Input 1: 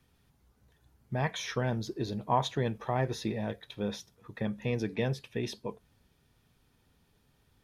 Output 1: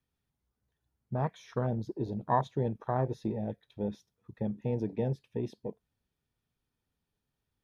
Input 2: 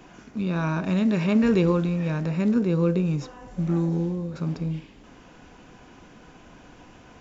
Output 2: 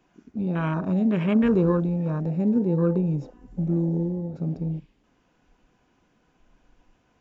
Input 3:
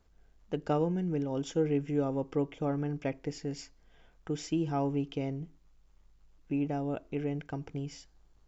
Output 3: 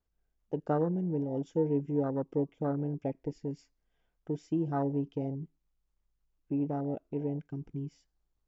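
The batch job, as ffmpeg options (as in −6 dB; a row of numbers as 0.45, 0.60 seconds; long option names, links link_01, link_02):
-af "afwtdn=0.0224"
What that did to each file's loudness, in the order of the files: −0.5, 0.0, 0.0 LU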